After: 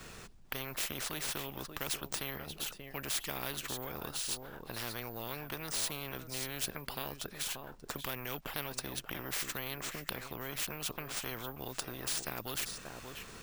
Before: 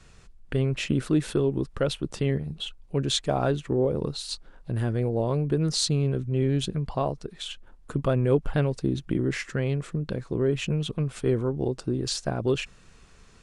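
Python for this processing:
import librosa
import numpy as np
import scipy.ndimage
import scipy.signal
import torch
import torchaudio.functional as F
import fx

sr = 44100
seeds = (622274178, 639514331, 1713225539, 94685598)

p1 = x + fx.echo_single(x, sr, ms=584, db=-20.5, dry=0)
p2 = np.repeat(p1[::3], 3)[:len(p1)]
p3 = fx.spectral_comp(p2, sr, ratio=4.0)
y = p3 * 10.0 ** (-4.5 / 20.0)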